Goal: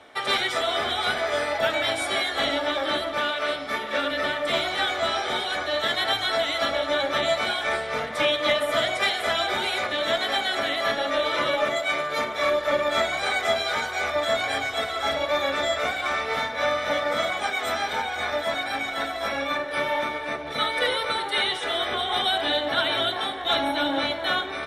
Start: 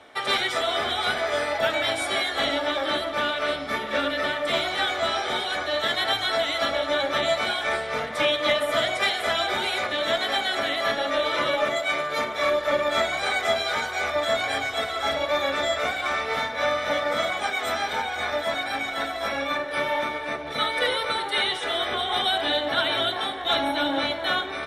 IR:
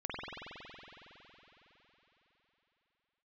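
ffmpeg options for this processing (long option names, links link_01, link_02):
-filter_complex "[0:a]asettb=1/sr,asplit=3[link_01][link_02][link_03];[link_01]atrim=end=3.184[link_04];[link_02]atrim=start=3.18:end=4.11,asetpts=PTS-STARTPTS,afade=type=in:duration=0.004:curve=qsin,afade=type=out:start_time=0.926:duration=0.004:curve=qsin,lowshelf=frequency=220:gain=-7.5[link_05];[link_03]atrim=start=4.106[link_06];[link_04][link_05]acrossfade=duration=0.004:curve1=hsin:curve2=qsin[link_07];[link_07][link_06]acrossfade=duration=0.004:curve1=qsin:curve2=hsin"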